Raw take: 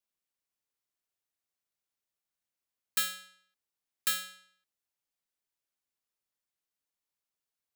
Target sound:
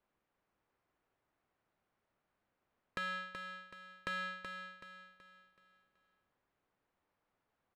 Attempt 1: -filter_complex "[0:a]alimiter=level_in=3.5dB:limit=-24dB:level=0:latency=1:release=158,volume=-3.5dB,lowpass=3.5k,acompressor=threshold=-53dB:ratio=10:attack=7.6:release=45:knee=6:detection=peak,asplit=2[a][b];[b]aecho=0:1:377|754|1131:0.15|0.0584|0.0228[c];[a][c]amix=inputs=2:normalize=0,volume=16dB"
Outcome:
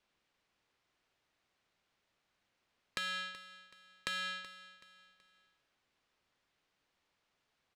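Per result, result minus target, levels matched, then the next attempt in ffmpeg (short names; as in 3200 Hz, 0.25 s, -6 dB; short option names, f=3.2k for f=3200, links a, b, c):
echo-to-direct -9.5 dB; 4000 Hz band +5.0 dB
-filter_complex "[0:a]alimiter=level_in=3.5dB:limit=-24dB:level=0:latency=1:release=158,volume=-3.5dB,lowpass=3.5k,acompressor=threshold=-53dB:ratio=10:attack=7.6:release=45:knee=6:detection=peak,asplit=2[a][b];[b]aecho=0:1:377|754|1131|1508|1885:0.447|0.174|0.0679|0.0265|0.0103[c];[a][c]amix=inputs=2:normalize=0,volume=16dB"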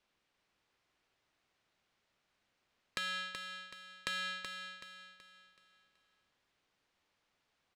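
4000 Hz band +6.5 dB
-filter_complex "[0:a]alimiter=level_in=3.5dB:limit=-24dB:level=0:latency=1:release=158,volume=-3.5dB,lowpass=1.4k,acompressor=threshold=-53dB:ratio=10:attack=7.6:release=45:knee=6:detection=peak,asplit=2[a][b];[b]aecho=0:1:377|754|1131|1508|1885:0.447|0.174|0.0679|0.0265|0.0103[c];[a][c]amix=inputs=2:normalize=0,volume=16dB"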